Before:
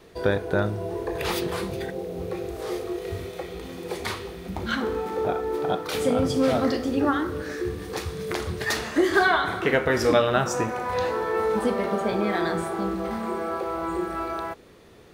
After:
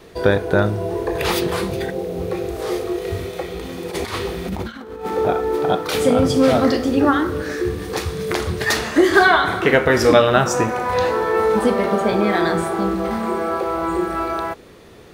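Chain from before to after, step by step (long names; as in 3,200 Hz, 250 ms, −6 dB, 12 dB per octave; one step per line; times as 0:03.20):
0:03.90–0:05.05: compressor whose output falls as the input rises −33 dBFS, ratio −0.5
level +7 dB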